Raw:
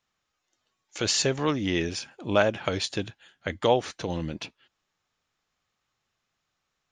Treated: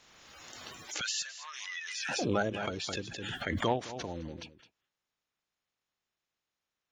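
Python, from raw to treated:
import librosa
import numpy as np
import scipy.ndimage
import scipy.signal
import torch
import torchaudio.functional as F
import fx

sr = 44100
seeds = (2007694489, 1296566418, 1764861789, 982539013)

y = fx.spec_quant(x, sr, step_db=30)
y = fx.highpass(y, sr, hz=1400.0, slope=24, at=(1.01, 2.09))
y = y + 10.0 ** (-15.5 / 20.0) * np.pad(y, (int(212 * sr / 1000.0), 0))[:len(y)]
y = fx.cheby_harmonics(y, sr, harmonics=(3,), levels_db=(-25,), full_scale_db=-8.0)
y = fx.pre_swell(y, sr, db_per_s=27.0)
y = F.gain(torch.from_numpy(y), -7.5).numpy()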